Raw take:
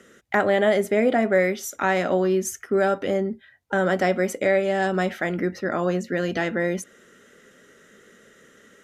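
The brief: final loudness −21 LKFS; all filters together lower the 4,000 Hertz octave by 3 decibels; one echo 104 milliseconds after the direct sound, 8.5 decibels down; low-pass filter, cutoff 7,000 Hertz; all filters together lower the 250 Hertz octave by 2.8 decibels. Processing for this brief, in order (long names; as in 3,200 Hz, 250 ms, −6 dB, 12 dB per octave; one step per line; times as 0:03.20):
low-pass filter 7,000 Hz
parametric band 250 Hz −4.5 dB
parametric band 4,000 Hz −4 dB
single-tap delay 104 ms −8.5 dB
level +2.5 dB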